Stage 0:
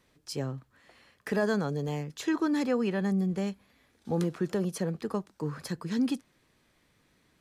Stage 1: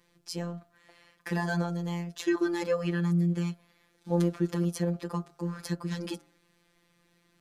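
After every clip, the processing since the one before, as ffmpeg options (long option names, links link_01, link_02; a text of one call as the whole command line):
ffmpeg -i in.wav -af "afftfilt=real='hypot(re,im)*cos(PI*b)':imag='0':win_size=1024:overlap=0.75,bandreject=frequency=76.25:width_type=h:width=4,bandreject=frequency=152.5:width_type=h:width=4,bandreject=frequency=228.75:width_type=h:width=4,bandreject=frequency=305:width_type=h:width=4,bandreject=frequency=381.25:width_type=h:width=4,bandreject=frequency=457.5:width_type=h:width=4,bandreject=frequency=533.75:width_type=h:width=4,bandreject=frequency=610:width_type=h:width=4,bandreject=frequency=686.25:width_type=h:width=4,bandreject=frequency=762.5:width_type=h:width=4,bandreject=frequency=838.75:width_type=h:width=4,bandreject=frequency=915:width_type=h:width=4,bandreject=frequency=991.25:width_type=h:width=4,bandreject=frequency=1067.5:width_type=h:width=4,bandreject=frequency=1143.75:width_type=h:width=4,bandreject=frequency=1220:width_type=h:width=4,bandreject=frequency=1296.25:width_type=h:width=4,bandreject=frequency=1372.5:width_type=h:width=4,bandreject=frequency=1448.75:width_type=h:width=4,bandreject=frequency=1525:width_type=h:width=4,bandreject=frequency=1601.25:width_type=h:width=4,volume=3.5dB" out.wav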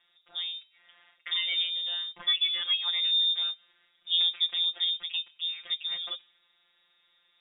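ffmpeg -i in.wav -af "lowpass=frequency=3200:width_type=q:width=0.5098,lowpass=frequency=3200:width_type=q:width=0.6013,lowpass=frequency=3200:width_type=q:width=0.9,lowpass=frequency=3200:width_type=q:width=2.563,afreqshift=-3800" out.wav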